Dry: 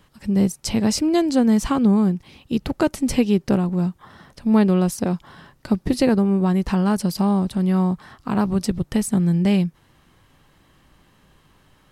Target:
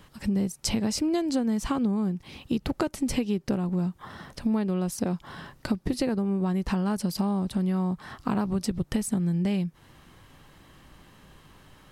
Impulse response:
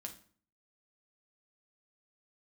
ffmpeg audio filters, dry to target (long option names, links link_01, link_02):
-af "acompressor=threshold=-27dB:ratio=6,volume=3dB"